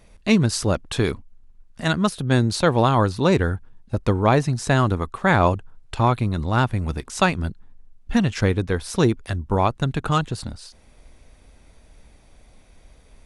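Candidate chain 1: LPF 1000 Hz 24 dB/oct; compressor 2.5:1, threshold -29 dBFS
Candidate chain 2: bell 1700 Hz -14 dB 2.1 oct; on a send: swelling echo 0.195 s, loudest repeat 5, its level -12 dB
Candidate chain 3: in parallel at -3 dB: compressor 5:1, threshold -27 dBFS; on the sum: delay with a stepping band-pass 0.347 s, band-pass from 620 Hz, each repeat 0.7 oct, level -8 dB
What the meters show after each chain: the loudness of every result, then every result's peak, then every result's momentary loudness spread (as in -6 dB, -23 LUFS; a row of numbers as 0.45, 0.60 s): -31.5, -23.0, -20.0 LUFS; -15.0, -5.5, -2.0 dBFS; 7, 11, 14 LU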